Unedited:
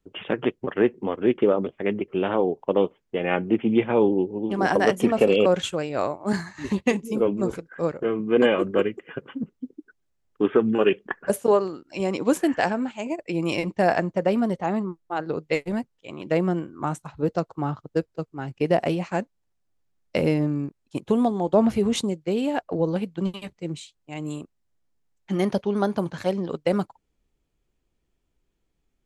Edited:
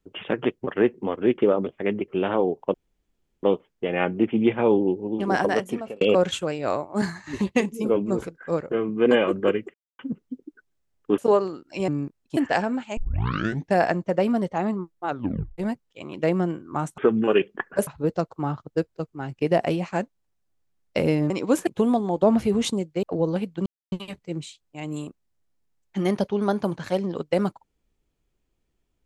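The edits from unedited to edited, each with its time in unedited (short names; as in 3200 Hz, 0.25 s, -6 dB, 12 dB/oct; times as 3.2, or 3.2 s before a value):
2.74 insert room tone 0.69 s
4.63–5.32 fade out
9.05–9.3 mute
10.49–11.38 move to 17.06
12.08–12.45 swap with 20.49–20.98
13.05 tape start 0.77 s
15.16 tape stop 0.50 s
22.34–22.63 cut
23.26 insert silence 0.26 s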